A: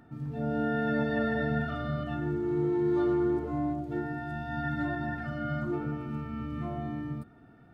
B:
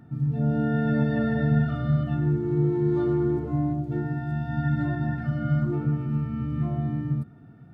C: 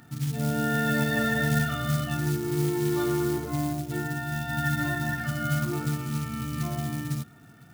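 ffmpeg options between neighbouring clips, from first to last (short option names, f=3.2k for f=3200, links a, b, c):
-af "equalizer=f=140:w=0.89:g=13.5,volume=-1.5dB"
-af "acrusher=bits=8:mode=log:mix=0:aa=0.000001,tiltshelf=f=1.1k:g=-9.5,volume=5dB"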